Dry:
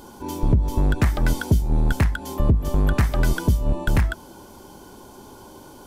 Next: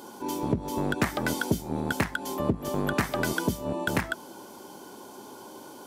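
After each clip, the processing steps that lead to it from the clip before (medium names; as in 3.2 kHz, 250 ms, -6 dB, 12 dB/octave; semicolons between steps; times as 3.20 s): high-pass 220 Hz 12 dB/octave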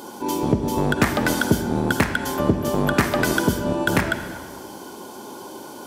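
reverberation RT60 1.5 s, pre-delay 41 ms, DRR 8 dB; trim +7 dB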